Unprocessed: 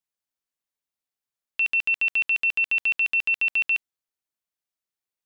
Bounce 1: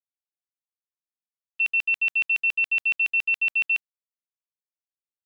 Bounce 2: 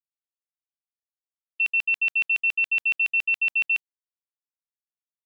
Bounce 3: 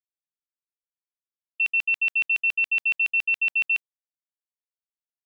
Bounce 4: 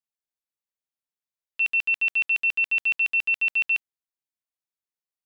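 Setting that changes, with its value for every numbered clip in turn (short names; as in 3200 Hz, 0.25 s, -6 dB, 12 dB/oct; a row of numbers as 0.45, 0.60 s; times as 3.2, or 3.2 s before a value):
gate, range: -20, -33, -57, -7 dB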